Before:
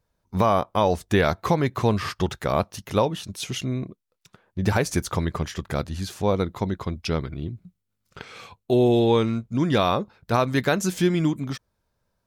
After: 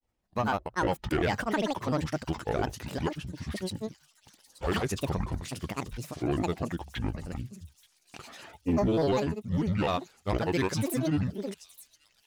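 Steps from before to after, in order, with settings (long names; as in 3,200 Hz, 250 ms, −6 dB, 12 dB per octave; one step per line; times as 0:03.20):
mains-hum notches 50/100 Hz
granular cloud, pitch spread up and down by 12 semitones
on a send: delay with a high-pass on its return 880 ms, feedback 73%, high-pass 5,500 Hz, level −12 dB
on the sum: soft clipping −15.5 dBFS, distortion −16 dB
level −4 dB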